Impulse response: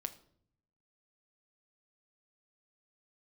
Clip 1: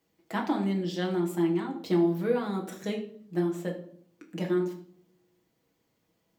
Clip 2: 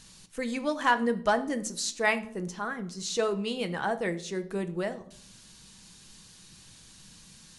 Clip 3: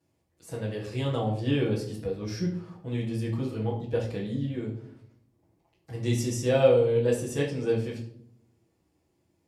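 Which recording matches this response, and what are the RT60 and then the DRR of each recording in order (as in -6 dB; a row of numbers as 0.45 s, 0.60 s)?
2; 0.60 s, 0.60 s, 0.60 s; 0.0 dB, 8.0 dB, -9.0 dB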